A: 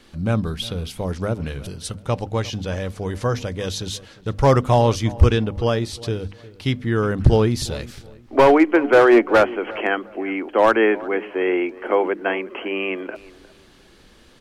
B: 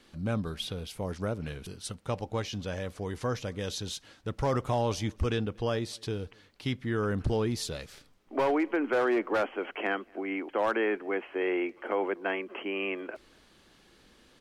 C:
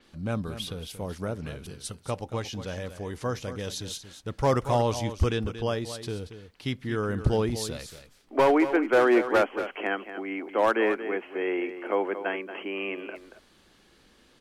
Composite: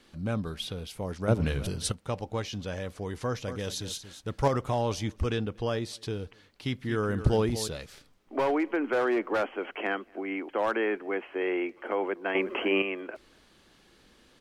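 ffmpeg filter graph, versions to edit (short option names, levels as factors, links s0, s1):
-filter_complex "[0:a]asplit=2[s0][s1];[2:a]asplit=2[s2][s3];[1:a]asplit=5[s4][s5][s6][s7][s8];[s4]atrim=end=1.282[s9];[s0]atrim=start=1.278:end=1.922[s10];[s5]atrim=start=1.918:end=3.482[s11];[s2]atrim=start=3.478:end=4.482[s12];[s6]atrim=start=4.478:end=6.732[s13];[s3]atrim=start=6.728:end=7.682[s14];[s7]atrim=start=7.678:end=12.352[s15];[s1]atrim=start=12.348:end=12.822[s16];[s8]atrim=start=12.818[s17];[s9][s10]acrossfade=d=0.004:c1=hsin:c2=hsin[s18];[s18][s11]acrossfade=d=0.004:c1=hsin:c2=hsin[s19];[s19][s12]acrossfade=d=0.004:c1=hsin:c2=hsin[s20];[s20][s13]acrossfade=d=0.004:c1=hsin:c2=hsin[s21];[s21][s14]acrossfade=d=0.004:c1=hsin:c2=hsin[s22];[s22][s15]acrossfade=d=0.004:c1=hsin:c2=hsin[s23];[s23][s16]acrossfade=d=0.004:c1=hsin:c2=hsin[s24];[s24][s17]acrossfade=d=0.004:c1=hsin:c2=hsin"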